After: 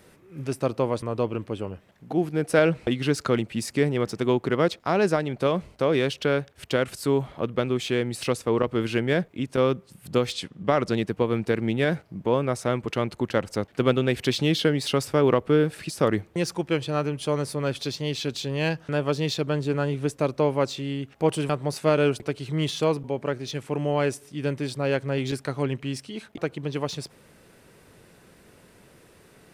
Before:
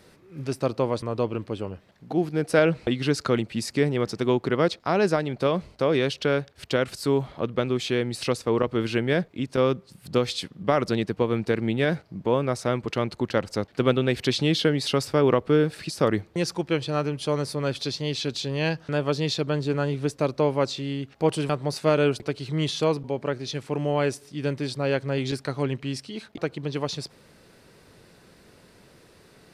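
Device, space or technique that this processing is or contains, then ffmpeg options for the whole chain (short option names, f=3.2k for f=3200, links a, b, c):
exciter from parts: -filter_complex "[0:a]asplit=2[a][b];[b]highpass=f=2.5k:p=1,asoftclip=type=tanh:threshold=-31dB,highpass=f=3.7k:w=0.5412,highpass=f=3.7k:w=1.3066,volume=-4.5dB[c];[a][c]amix=inputs=2:normalize=0,asettb=1/sr,asplit=3[d][e][f];[d]atrim=end=10.324[g];[e]atrim=start=10.32:end=10.92,asetpts=PTS-STARTPTS,afade=t=in:d=0.004:c=qsin,afade=t=out:st=0.596:d=0.004:c=qsin,lowpass=8.9k[h];[f]atrim=start=10.916[i];[g][h]acrossfade=d=0.004:c1=hsin:c2=qsin[j];[j][i]acrossfade=d=0.004:c1=qsin:c2=hsin"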